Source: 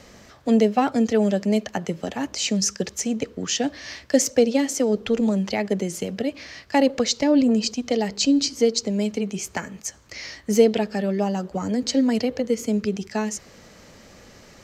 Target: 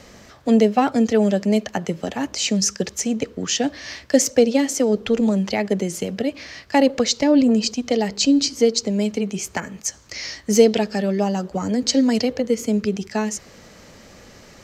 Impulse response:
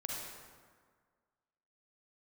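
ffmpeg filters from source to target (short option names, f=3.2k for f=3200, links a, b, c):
-filter_complex "[0:a]asettb=1/sr,asplit=3[a][b][c];[a]atrim=end=9.604[d];[b]atrim=start=9.6:end=12.33,asetpts=PTS-STARTPTS,afade=t=in:d=0.004:c=qsin,afade=t=out:st=2.726:d=0.004:c=qsin,adynamicequalizer=threshold=0.00794:dfrequency=5700:dqfactor=1.1:tfrequency=5700:tqfactor=1.1:attack=5:release=100:ratio=0.375:range=3:mode=boostabove:tftype=bell[e];[c]atrim=start=12.326[f];[d][e]acrossfade=d=0.004:c1=hsin:c2=qsin[g];[g][f]acrossfade=d=0.004:c1=qsin:c2=hsin,volume=2.5dB"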